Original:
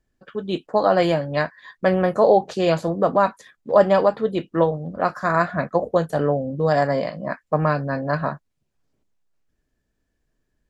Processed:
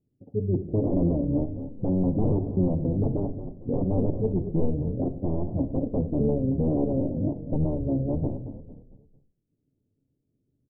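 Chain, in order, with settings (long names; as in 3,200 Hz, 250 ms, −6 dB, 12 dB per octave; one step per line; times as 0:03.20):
adaptive Wiener filter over 41 samples
high-pass filter 190 Hz 12 dB per octave
in parallel at +3 dB: downward compressor 8 to 1, threshold −28 dBFS, peak gain reduction 18.5 dB
on the sum: pitch-shifted copies added −12 semitones −1 dB
wave folding −12.5 dBFS
Gaussian smoothing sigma 17 samples
echo with shifted repeats 225 ms, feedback 42%, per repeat −36 Hz, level −10 dB
on a send at −9 dB: convolution reverb RT60 0.55 s, pre-delay 7 ms
on the sum: level −2 dB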